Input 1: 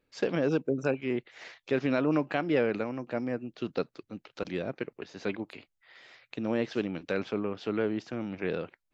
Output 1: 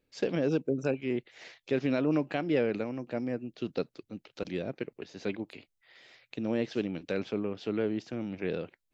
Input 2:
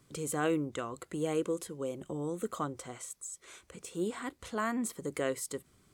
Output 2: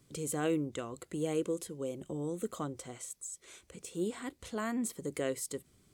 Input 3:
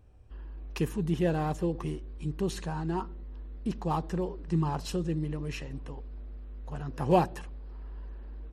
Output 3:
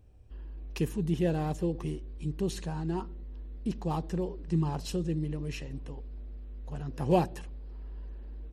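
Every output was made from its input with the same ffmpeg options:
-af "equalizer=f=1.2k:t=o:w=1.4:g=-6.5"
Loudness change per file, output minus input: -1.0, -1.0, -1.0 LU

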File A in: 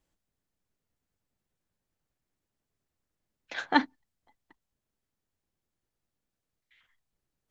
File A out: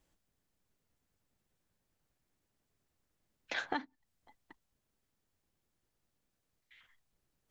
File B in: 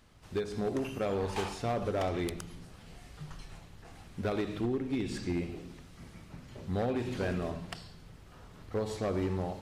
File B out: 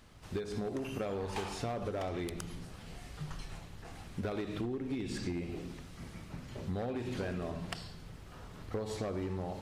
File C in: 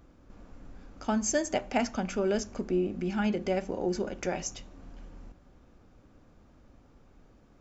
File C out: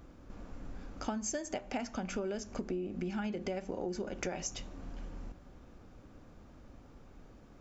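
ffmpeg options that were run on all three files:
-af "acompressor=threshold=-36dB:ratio=16,volume=3dB"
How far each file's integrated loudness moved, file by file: -9.5, -5.0, -8.5 LU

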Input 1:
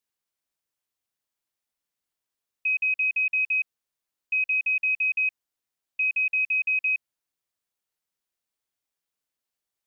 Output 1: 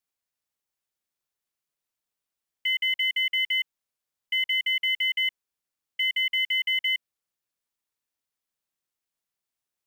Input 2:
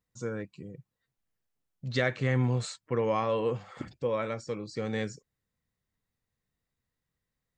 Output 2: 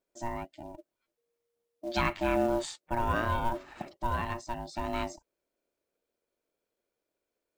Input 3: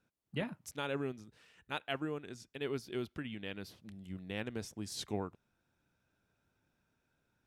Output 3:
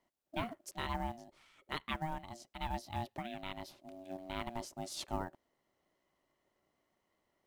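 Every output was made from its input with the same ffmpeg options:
-af "acrusher=bits=7:mode=log:mix=0:aa=0.000001,aeval=exprs='val(0)*sin(2*PI*470*n/s)':c=same,volume=2dB"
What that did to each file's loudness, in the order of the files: -1.0, -1.0, -1.0 LU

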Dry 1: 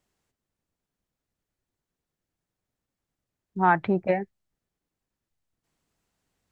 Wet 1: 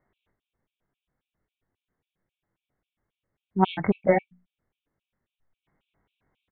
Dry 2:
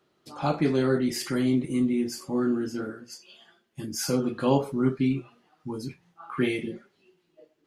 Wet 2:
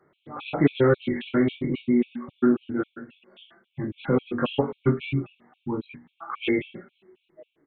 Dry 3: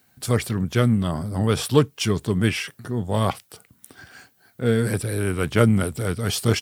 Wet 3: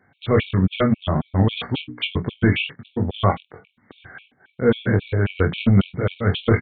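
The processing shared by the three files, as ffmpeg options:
-filter_complex "[0:a]bandreject=f=60:t=h:w=6,bandreject=f=120:t=h:w=6,bandreject=f=180:t=h:w=6,bandreject=f=240:t=h:w=6,bandreject=f=300:t=h:w=6,aeval=exprs='0.841*sin(PI/2*2.24*val(0)/0.841)':c=same,asplit=2[a][b];[b]aecho=0:1:21|46:0.596|0.224[c];[a][c]amix=inputs=2:normalize=0,aresample=8000,aresample=44100,afftfilt=real='re*gt(sin(2*PI*3.7*pts/sr)*(1-2*mod(floor(b*sr/1024/2200),2)),0)':imag='im*gt(sin(2*PI*3.7*pts/sr)*(1-2*mod(floor(b*sr/1024/2200),2)),0)':win_size=1024:overlap=0.75,volume=-5.5dB"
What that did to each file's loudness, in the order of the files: -0.5, +1.5, +1.0 LU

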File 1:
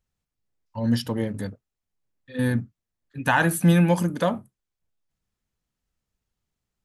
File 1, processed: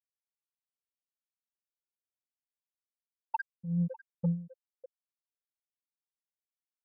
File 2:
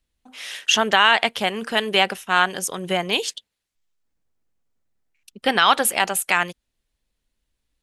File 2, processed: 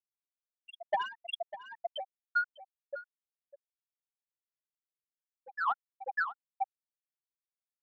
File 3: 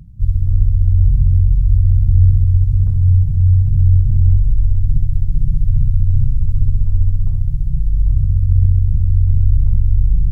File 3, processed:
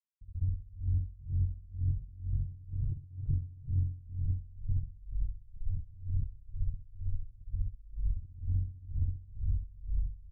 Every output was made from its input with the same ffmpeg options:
-filter_complex "[0:a]lowshelf=f=83:g=-9,bandreject=f=60:t=h:w=6,bandreject=f=120:t=h:w=6,bandreject=f=180:t=h:w=6,bandreject=f=240:t=h:w=6,bandreject=f=300:t=h:w=6,bandreject=f=360:t=h:w=6,bandreject=f=420:t=h:w=6,bandreject=f=480:t=h:w=6,bandreject=f=540:t=h:w=6,afftfilt=real='re*gte(hypot(re,im),1)':imag='im*gte(hypot(re,im),1)':win_size=1024:overlap=0.75,alimiter=limit=-16.5dB:level=0:latency=1:release=135,asplit=2[a][b];[b]aecho=0:1:599:0.668[c];[a][c]amix=inputs=2:normalize=0,acompressor=threshold=-27dB:ratio=6,asoftclip=type=tanh:threshold=-22dB,acontrast=67,aeval=exprs='val(0)*pow(10,-23*(0.5-0.5*cos(2*PI*2.1*n/s))/20)':c=same,volume=-3.5dB"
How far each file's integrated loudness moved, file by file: -12.0, -17.5, -22.0 LU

